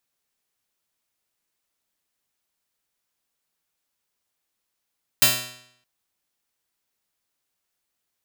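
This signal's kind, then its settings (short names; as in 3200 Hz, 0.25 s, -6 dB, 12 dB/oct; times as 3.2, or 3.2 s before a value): plucked string B2, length 0.62 s, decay 0.71 s, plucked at 0.29, bright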